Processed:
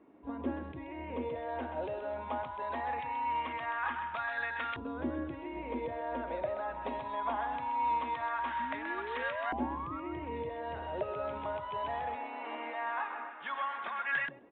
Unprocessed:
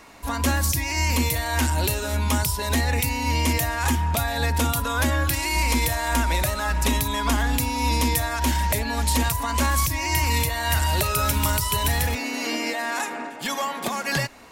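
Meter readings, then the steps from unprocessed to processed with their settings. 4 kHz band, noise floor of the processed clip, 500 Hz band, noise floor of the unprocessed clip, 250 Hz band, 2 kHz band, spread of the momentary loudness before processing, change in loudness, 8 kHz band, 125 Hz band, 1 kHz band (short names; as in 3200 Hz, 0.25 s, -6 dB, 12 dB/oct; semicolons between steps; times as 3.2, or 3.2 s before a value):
-23.5 dB, -45 dBFS, -7.0 dB, -33 dBFS, -13.0 dB, -11.5 dB, 5 LU, -13.5 dB, under -40 dB, -26.5 dB, -8.0 dB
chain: painted sound rise, 8.59–10, 230–1400 Hz -22 dBFS; downsampling 8000 Hz; thinning echo 0.129 s, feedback 23%, high-pass 420 Hz, level -7.5 dB; LFO band-pass saw up 0.21 Hz 310–1700 Hz; gain -3 dB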